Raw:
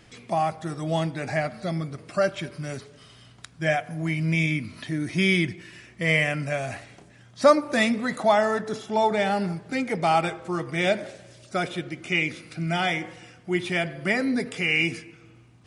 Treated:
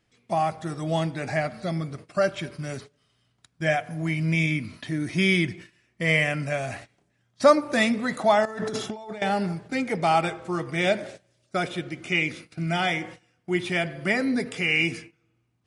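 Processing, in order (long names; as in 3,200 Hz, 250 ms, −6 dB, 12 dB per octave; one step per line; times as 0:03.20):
noise gate −41 dBFS, range −18 dB
0:08.45–0:09.22: compressor whose output falls as the input rises −34 dBFS, ratio −1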